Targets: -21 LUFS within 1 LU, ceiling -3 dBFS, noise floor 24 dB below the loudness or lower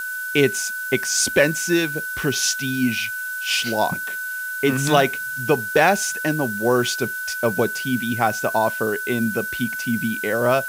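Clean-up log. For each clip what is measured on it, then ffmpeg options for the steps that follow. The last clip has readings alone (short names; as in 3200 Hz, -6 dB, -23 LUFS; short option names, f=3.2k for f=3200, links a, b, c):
steady tone 1500 Hz; tone level -26 dBFS; noise floor -29 dBFS; noise floor target -45 dBFS; loudness -21.0 LUFS; peak -2.0 dBFS; loudness target -21.0 LUFS
-> -af "bandreject=f=1.5k:w=30"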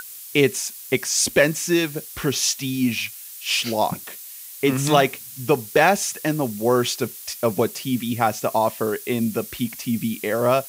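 steady tone none; noise floor -39 dBFS; noise floor target -46 dBFS
-> -af "afftdn=nr=7:nf=-39"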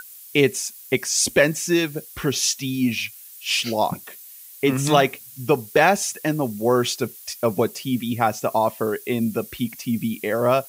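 noise floor -43 dBFS; noise floor target -46 dBFS
-> -af "afftdn=nr=6:nf=-43"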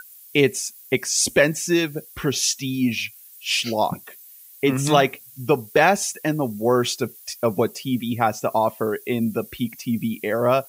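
noise floor -46 dBFS; loudness -22.0 LUFS; peak -2.0 dBFS; loudness target -21.0 LUFS
-> -af "volume=1dB,alimiter=limit=-3dB:level=0:latency=1"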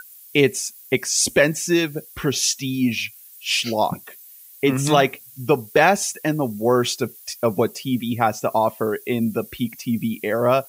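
loudness -21.0 LUFS; peak -3.0 dBFS; noise floor -45 dBFS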